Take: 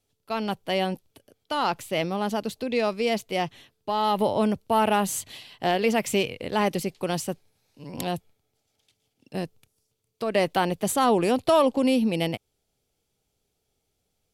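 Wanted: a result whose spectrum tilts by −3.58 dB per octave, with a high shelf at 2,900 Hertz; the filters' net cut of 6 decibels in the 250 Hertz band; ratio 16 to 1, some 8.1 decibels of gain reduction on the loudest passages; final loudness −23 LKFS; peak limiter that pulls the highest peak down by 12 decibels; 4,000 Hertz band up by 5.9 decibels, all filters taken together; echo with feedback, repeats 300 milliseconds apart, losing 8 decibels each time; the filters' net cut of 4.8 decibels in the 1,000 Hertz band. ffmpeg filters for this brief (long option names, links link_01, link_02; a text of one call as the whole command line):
ffmpeg -i in.wav -af "equalizer=frequency=250:width_type=o:gain=-7.5,equalizer=frequency=1000:width_type=o:gain=-7,highshelf=frequency=2900:gain=7.5,equalizer=frequency=4000:width_type=o:gain=3,acompressor=threshold=-26dB:ratio=16,alimiter=limit=-21dB:level=0:latency=1,aecho=1:1:300|600|900|1200|1500:0.398|0.159|0.0637|0.0255|0.0102,volume=9.5dB" out.wav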